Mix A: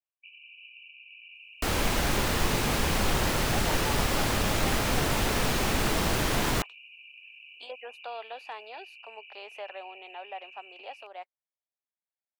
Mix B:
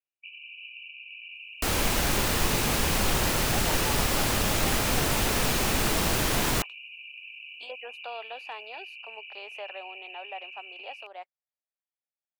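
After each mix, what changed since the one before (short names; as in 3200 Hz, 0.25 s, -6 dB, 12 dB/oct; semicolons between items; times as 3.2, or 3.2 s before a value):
first sound +6.0 dB; second sound: add high shelf 5500 Hz +6.5 dB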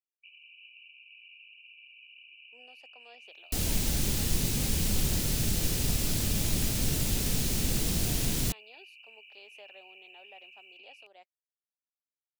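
second sound: entry +1.90 s; master: add EQ curve 180 Hz 0 dB, 1100 Hz -19 dB, 3900 Hz -5 dB, 7200 Hz -2 dB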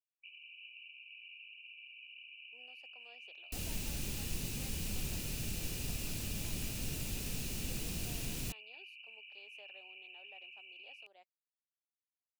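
speech -7.0 dB; second sound -11.0 dB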